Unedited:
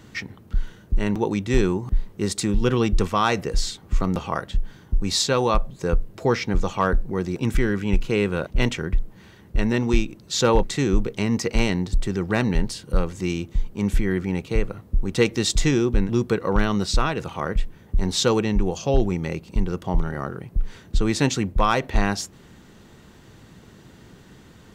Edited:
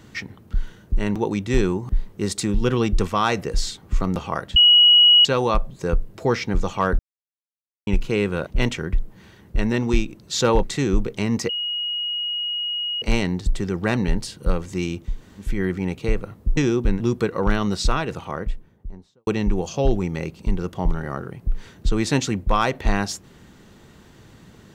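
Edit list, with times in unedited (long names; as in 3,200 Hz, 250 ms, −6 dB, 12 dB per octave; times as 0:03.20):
0:04.56–0:05.25: beep over 2,910 Hz −9 dBFS
0:06.99–0:07.87: silence
0:11.49: insert tone 2,890 Hz −23 dBFS 1.53 s
0:13.60–0:13.95: fill with room tone, crossfade 0.24 s
0:15.04–0:15.66: remove
0:17.08–0:18.36: fade out and dull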